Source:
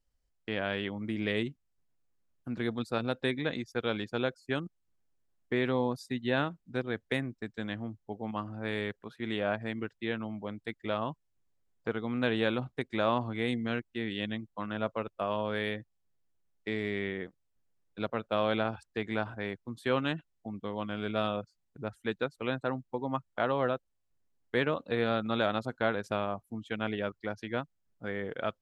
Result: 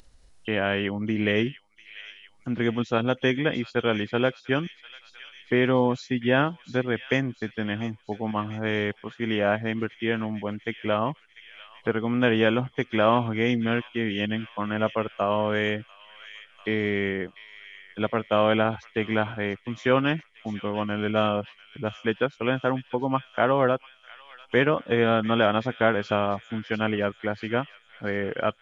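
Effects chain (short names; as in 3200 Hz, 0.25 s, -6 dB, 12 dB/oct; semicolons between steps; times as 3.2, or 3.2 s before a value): nonlinear frequency compression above 2700 Hz 1.5:1; thin delay 0.695 s, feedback 55%, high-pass 2800 Hz, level -9 dB; upward compressor, threshold -48 dBFS; gain +8 dB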